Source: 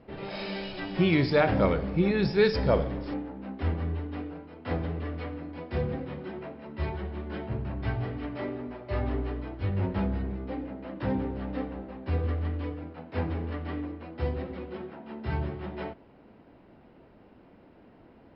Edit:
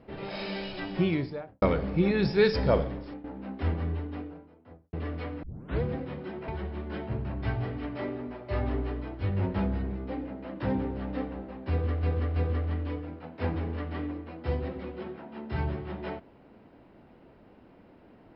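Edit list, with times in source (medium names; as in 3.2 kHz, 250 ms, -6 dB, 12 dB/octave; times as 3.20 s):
0.78–1.62 s: studio fade out
2.77–3.24 s: fade out, to -12.5 dB
3.92–4.93 s: studio fade out
5.43 s: tape start 0.39 s
6.48–6.88 s: delete
12.10–12.43 s: loop, 3 plays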